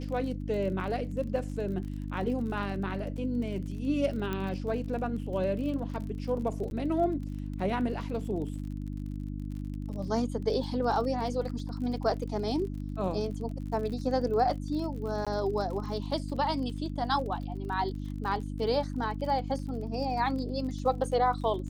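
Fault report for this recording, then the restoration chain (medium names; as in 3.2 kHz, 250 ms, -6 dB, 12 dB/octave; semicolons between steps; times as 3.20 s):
crackle 41 per s -39 dBFS
hum 50 Hz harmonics 6 -36 dBFS
4.33 s: pop -20 dBFS
6.70–6.71 s: dropout 10 ms
15.25–15.27 s: dropout 16 ms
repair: de-click; de-hum 50 Hz, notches 6; interpolate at 6.70 s, 10 ms; interpolate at 15.25 s, 16 ms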